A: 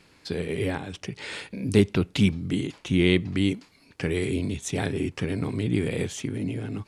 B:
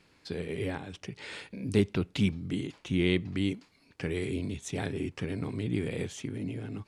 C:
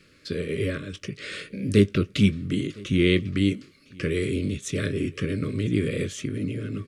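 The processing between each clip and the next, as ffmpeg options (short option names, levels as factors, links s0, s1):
-af "highshelf=f=9100:g=-5,volume=0.501"
-filter_complex "[0:a]asuperstop=centerf=830:order=20:qfactor=1.8,asplit=2[s0][s1];[s1]adelay=20,volume=0.224[s2];[s0][s2]amix=inputs=2:normalize=0,aecho=1:1:1010:0.0668,volume=2.11"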